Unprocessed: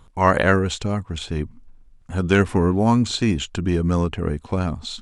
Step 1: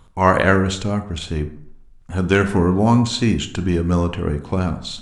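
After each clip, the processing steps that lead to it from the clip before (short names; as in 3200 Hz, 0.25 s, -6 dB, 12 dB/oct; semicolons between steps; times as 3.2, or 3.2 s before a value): reverb RT60 0.70 s, pre-delay 22 ms, DRR 9 dB; gain +1.5 dB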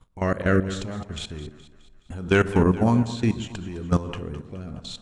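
level quantiser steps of 16 dB; rotary speaker horn 0.7 Hz; split-band echo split 650 Hz, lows 0.135 s, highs 0.21 s, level -14.5 dB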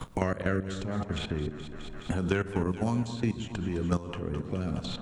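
three-band squash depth 100%; gain -7.5 dB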